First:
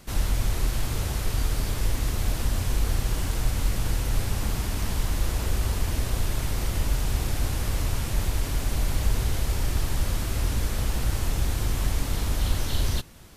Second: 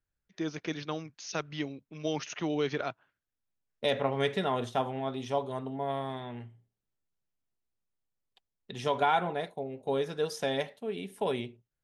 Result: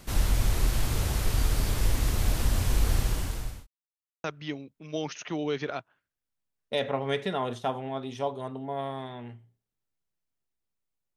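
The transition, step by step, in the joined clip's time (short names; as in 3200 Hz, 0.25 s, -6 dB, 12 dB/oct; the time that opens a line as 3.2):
first
2.99–3.67 fade out linear
3.67–4.24 mute
4.24 switch to second from 1.35 s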